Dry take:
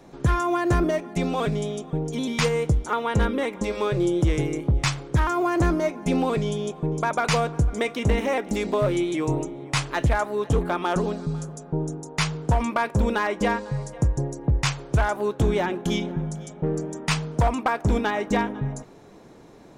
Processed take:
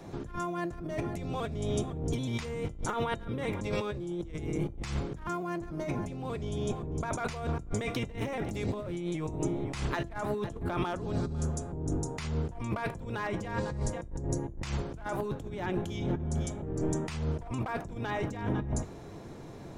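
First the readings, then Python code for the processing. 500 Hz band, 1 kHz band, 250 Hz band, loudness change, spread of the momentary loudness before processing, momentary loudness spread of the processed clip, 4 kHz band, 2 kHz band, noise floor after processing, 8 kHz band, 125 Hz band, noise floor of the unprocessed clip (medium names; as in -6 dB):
-10.0 dB, -11.0 dB, -8.5 dB, -9.5 dB, 6 LU, 4 LU, -12.0 dB, -11.5 dB, -44 dBFS, -8.5 dB, -8.5 dB, -47 dBFS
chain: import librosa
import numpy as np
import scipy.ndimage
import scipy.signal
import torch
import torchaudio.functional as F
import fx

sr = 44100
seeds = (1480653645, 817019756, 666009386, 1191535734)

y = fx.octave_divider(x, sr, octaves=1, level_db=2.0)
y = fx.over_compress(y, sr, threshold_db=-29.0, ratio=-1.0)
y = fx.comb_fb(y, sr, f0_hz=340.0, decay_s=0.32, harmonics='all', damping=0.0, mix_pct=50)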